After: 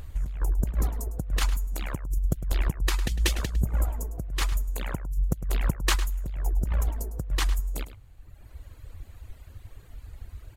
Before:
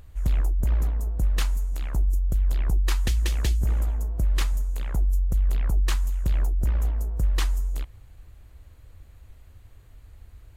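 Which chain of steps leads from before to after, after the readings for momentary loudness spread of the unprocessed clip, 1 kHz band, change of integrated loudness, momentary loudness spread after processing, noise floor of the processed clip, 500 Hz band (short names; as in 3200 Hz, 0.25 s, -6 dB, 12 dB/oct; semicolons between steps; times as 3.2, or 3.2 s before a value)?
3 LU, +4.0 dB, -3.0 dB, 20 LU, -50 dBFS, +2.5 dB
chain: reverb removal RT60 1.4 s; negative-ratio compressor -28 dBFS, ratio -0.5; outdoor echo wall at 18 m, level -13 dB; gain +4 dB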